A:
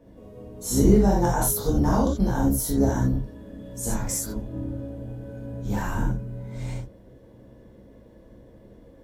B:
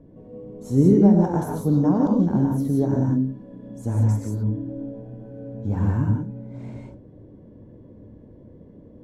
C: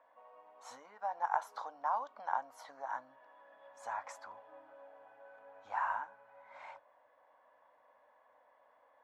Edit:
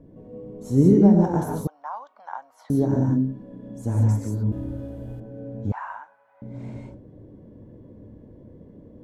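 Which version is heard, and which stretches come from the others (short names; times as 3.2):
B
1.67–2.7 from C
4.52–5.2 from A
5.72–6.42 from C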